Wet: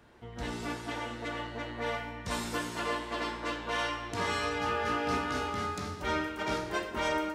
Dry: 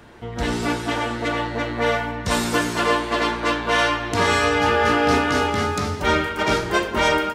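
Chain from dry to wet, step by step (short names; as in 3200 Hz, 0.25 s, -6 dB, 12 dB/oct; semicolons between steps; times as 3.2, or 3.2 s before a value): resonator 62 Hz, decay 0.88 s, harmonics all, mix 70%; gain -5 dB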